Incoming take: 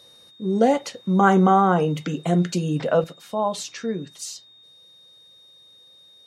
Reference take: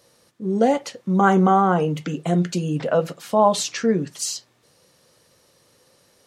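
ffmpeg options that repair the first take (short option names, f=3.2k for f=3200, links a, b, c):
-af "bandreject=f=3.7k:w=30,asetnsamples=n=441:p=0,asendcmd='3.04 volume volume 7.5dB',volume=0dB"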